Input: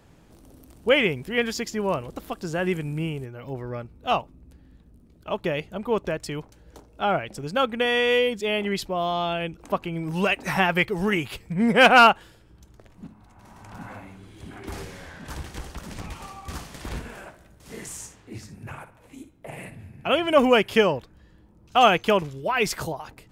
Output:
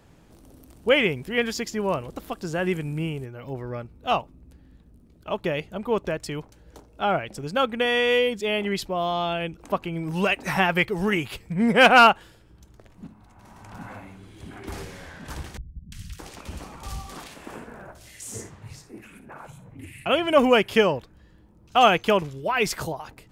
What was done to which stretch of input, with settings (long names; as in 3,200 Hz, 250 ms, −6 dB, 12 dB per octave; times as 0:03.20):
0:15.57–0:20.06: three-band delay without the direct sound lows, highs, mids 350/620 ms, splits 180/1,900 Hz